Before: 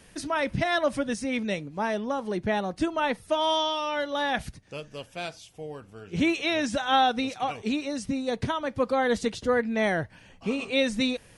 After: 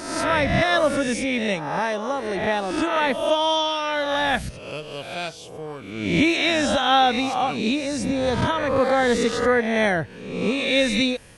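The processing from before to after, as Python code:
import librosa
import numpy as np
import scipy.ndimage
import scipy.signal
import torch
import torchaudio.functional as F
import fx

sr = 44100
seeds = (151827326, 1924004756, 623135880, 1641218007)

y = fx.spec_swells(x, sr, rise_s=0.92)
y = fx.low_shelf(y, sr, hz=230.0, db=-9.0, at=(1.79, 3.07))
y = y * 10.0 ** (3.5 / 20.0)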